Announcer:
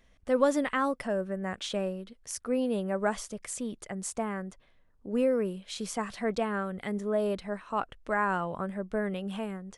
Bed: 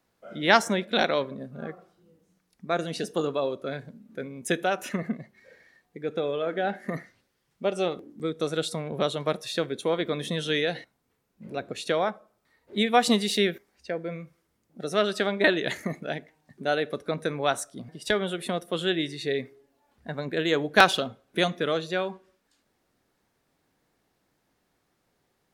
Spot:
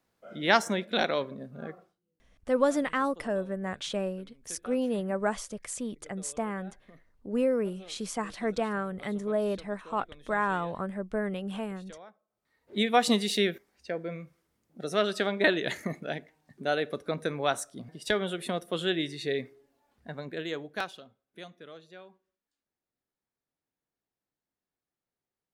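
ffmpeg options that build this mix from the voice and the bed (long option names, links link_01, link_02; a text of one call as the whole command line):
ffmpeg -i stem1.wav -i stem2.wav -filter_complex "[0:a]adelay=2200,volume=0dB[link_01];[1:a]volume=17.5dB,afade=type=out:start_time=1.78:duration=0.21:silence=0.1,afade=type=in:start_time=12.27:duration=0.5:silence=0.0891251,afade=type=out:start_time=19.69:duration=1.22:silence=0.11885[link_02];[link_01][link_02]amix=inputs=2:normalize=0" out.wav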